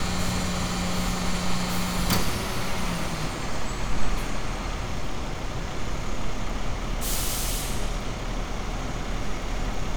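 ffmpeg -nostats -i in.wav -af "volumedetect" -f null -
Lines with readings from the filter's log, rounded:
mean_volume: -24.9 dB
max_volume: -8.3 dB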